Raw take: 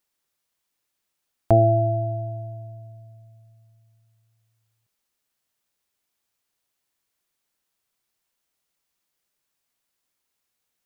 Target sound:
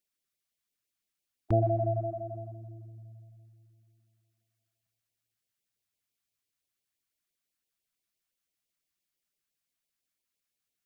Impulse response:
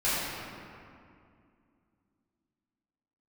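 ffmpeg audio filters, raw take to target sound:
-filter_complex "[0:a]equalizer=frequency=900:width=4.6:gain=-9,asplit=2[link_01][link_02];[1:a]atrim=start_sample=2205,adelay=120[link_03];[link_02][link_03]afir=irnorm=-1:irlink=0,volume=-23.5dB[link_04];[link_01][link_04]amix=inputs=2:normalize=0,afftfilt=real='re*(1-between(b*sr/1024,390*pow(1500/390,0.5+0.5*sin(2*PI*5.9*pts/sr))/1.41,390*pow(1500/390,0.5+0.5*sin(2*PI*5.9*pts/sr))*1.41))':imag='im*(1-between(b*sr/1024,390*pow(1500/390,0.5+0.5*sin(2*PI*5.9*pts/sr))/1.41,390*pow(1500/390,0.5+0.5*sin(2*PI*5.9*pts/sr))*1.41))':win_size=1024:overlap=0.75,volume=-7.5dB"

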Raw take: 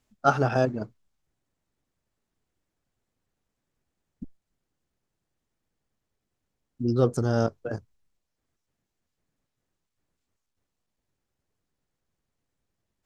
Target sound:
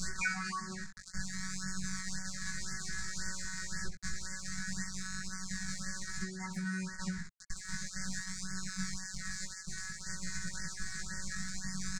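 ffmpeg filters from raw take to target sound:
ffmpeg -i in.wav -af "aeval=exprs='val(0)+0.5*0.0299*sgn(val(0))':channel_layout=same,highpass=frequency=49:poles=1,asetrate=72056,aresample=44100,atempo=0.612027,lowshelf=frequency=300:gain=11.5,afftfilt=real='hypot(re,im)*cos(PI*b)':imag='0':win_size=1024:overlap=0.75,aecho=1:1:72:0.237,asetrate=48000,aresample=44100,acompressor=threshold=-27dB:ratio=12,aeval=exprs='val(0)*gte(abs(val(0)),0.00668)':channel_layout=same,firequalizer=gain_entry='entry(100,0);entry(170,-6);entry(340,-28);entry(800,-25);entry(1700,7);entry(2900,-26);entry(4100,-2);entry(7200,4);entry(12000,-30)':delay=0.05:min_phase=1,flanger=delay=18:depth=2.6:speed=0.29,afftfilt=real='re*(1-between(b*sr/1024,490*pow(3200/490,0.5+0.5*sin(2*PI*1.9*pts/sr))/1.41,490*pow(3200/490,0.5+0.5*sin(2*PI*1.9*pts/sr))*1.41))':imag='im*(1-between(b*sr/1024,490*pow(3200/490,0.5+0.5*sin(2*PI*1.9*pts/sr))/1.41,490*pow(3200/490,0.5+0.5*sin(2*PI*1.9*pts/sr))*1.41))':win_size=1024:overlap=0.75,volume=10.5dB" out.wav

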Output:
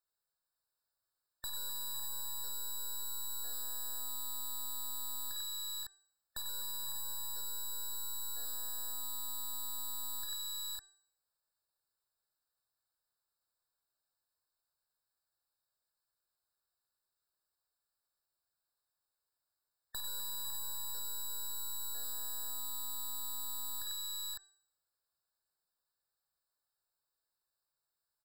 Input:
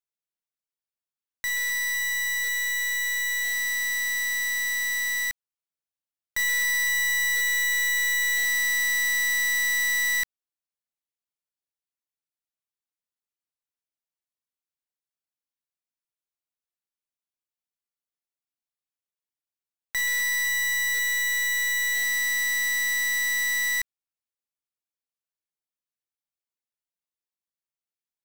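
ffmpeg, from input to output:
ffmpeg -i in.wav -af "equalizer=frequency=240:width=1.3:gain=-14,bandreject=frequency=390.4:width_type=h:width=4,bandreject=frequency=780.8:width_type=h:width=4,bandreject=frequency=1171.2:width_type=h:width=4,bandreject=frequency=1561.6:width_type=h:width=4,bandreject=frequency=1952:width_type=h:width=4,bandreject=frequency=2342.4:width_type=h:width=4,bandreject=frequency=2732.8:width_type=h:width=4,bandreject=frequency=3123.2:width_type=h:width=4,bandreject=frequency=3513.6:width_type=h:width=4,bandreject=frequency=3904:width_type=h:width=4,bandreject=frequency=4294.4:width_type=h:width=4,bandreject=frequency=4684.8:width_type=h:width=4,bandreject=frequency=5075.2:width_type=h:width=4,bandreject=frequency=5465.6:width_type=h:width=4,bandreject=frequency=5856:width_type=h:width=4,bandreject=frequency=6246.4:width_type=h:width=4,bandreject=frequency=6636.8:width_type=h:width=4,bandreject=frequency=7027.2:width_type=h:width=4,bandreject=frequency=7417.6:width_type=h:width=4,bandreject=frequency=7808:width_type=h:width=4,bandreject=frequency=8198.4:width_type=h:width=4,bandreject=frequency=8588.8:width_type=h:width=4,bandreject=frequency=8979.2:width_type=h:width=4,bandreject=frequency=9369.6:width_type=h:width=4,bandreject=frequency=9760:width_type=h:width=4,bandreject=frequency=10150.4:width_type=h:width=4,alimiter=level_in=7dB:limit=-24dB:level=0:latency=1,volume=-7dB,aecho=1:1:53|95|520|556:0.316|0.531|0.335|0.501,aeval=exprs='(tanh(63.1*val(0)+0.1)-tanh(0.1))/63.1':channel_layout=same,afftfilt=real='re*eq(mod(floor(b*sr/1024/1800),2),0)':imag='im*eq(mod(floor(b*sr/1024/1800),2),0)':win_size=1024:overlap=0.75,volume=6dB" out.wav

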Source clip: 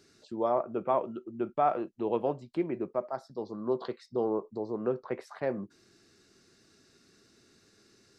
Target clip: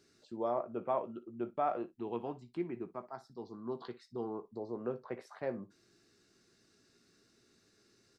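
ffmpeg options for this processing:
ffmpeg -i in.wav -filter_complex "[0:a]asettb=1/sr,asplit=3[link_01][link_02][link_03];[link_01]atrim=end=1.864[link_04];[link_02]atrim=start=1.86:end=4.52,asetpts=PTS-STARTPTS,afade=type=in:duration=0.004:curve=qsin,afade=type=out:start_time=2.656:duration=0.004:curve=qsin,equalizer=frequency=560:width_type=o:width=0.37:gain=-13.5[link_05];[link_03]atrim=start=4.516[link_06];[link_04][link_05]acrossfade=duration=0.004:curve1=hsin:curve2=qsin[link_07];[link_07][link_06]acrossfade=duration=0.004:curve1=qsin:curve2=hsin,aecho=1:1:17|59:0.282|0.133,volume=-6.5dB" out.wav

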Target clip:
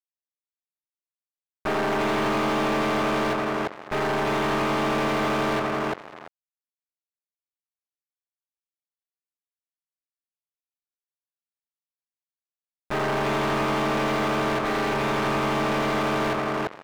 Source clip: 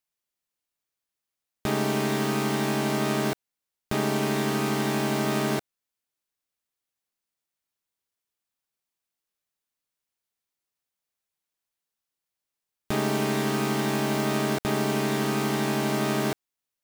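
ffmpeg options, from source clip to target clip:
ffmpeg -i in.wav -filter_complex "[0:a]asubboost=boost=10.5:cutoff=65,alimiter=level_in=4dB:limit=-24dB:level=0:latency=1:release=197,volume=-4dB,volume=35dB,asoftclip=hard,volume=-35dB,asplit=2[link_01][link_02];[link_02]adelay=341,lowpass=frequency=2600:poles=1,volume=-4dB,asplit=2[link_03][link_04];[link_04]adelay=341,lowpass=frequency=2600:poles=1,volume=0.43,asplit=2[link_05][link_06];[link_06]adelay=341,lowpass=frequency=2600:poles=1,volume=0.43,asplit=2[link_07][link_08];[link_08]adelay=341,lowpass=frequency=2600:poles=1,volume=0.43,asplit=2[link_09][link_10];[link_10]adelay=341,lowpass=frequency=2600:poles=1,volume=0.43[link_11];[link_03][link_05][link_07][link_09][link_11]amix=inputs=5:normalize=0[link_12];[link_01][link_12]amix=inputs=2:normalize=0,acrusher=bits=6:mix=0:aa=0.5,asplit=2[link_13][link_14];[link_14]highpass=frequency=720:poles=1,volume=24dB,asoftclip=type=tanh:threshold=-22dB[link_15];[link_13][link_15]amix=inputs=2:normalize=0,lowpass=frequency=1400:poles=1,volume=-6dB,volume=7.5dB" out.wav

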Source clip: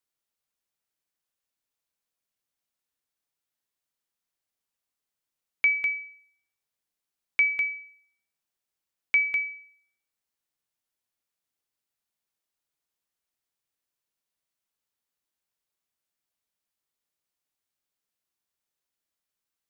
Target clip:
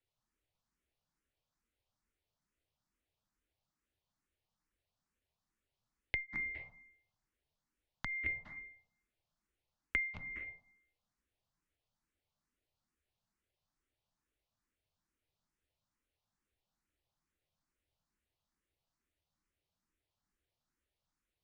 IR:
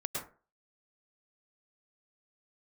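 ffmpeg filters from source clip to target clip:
-filter_complex "[0:a]asplit=2[link_01][link_02];[1:a]atrim=start_sample=2205,asetrate=25137,aresample=44100[link_03];[link_02][link_03]afir=irnorm=-1:irlink=0,volume=-6.5dB[link_04];[link_01][link_04]amix=inputs=2:normalize=0,asetrate=40517,aresample=44100,aemphasis=mode=reproduction:type=bsi,acrossover=split=500[link_05][link_06];[link_06]acompressor=threshold=-33dB:ratio=6[link_07];[link_05][link_07]amix=inputs=2:normalize=0,asplit=2[link_08][link_09];[link_09]afreqshift=2.3[link_10];[link_08][link_10]amix=inputs=2:normalize=1,volume=-1dB"

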